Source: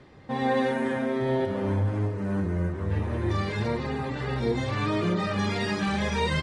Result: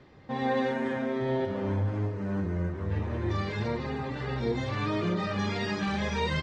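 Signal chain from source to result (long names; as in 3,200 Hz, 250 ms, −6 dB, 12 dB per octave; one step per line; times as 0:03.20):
low-pass filter 6,900 Hz 24 dB per octave
level −3 dB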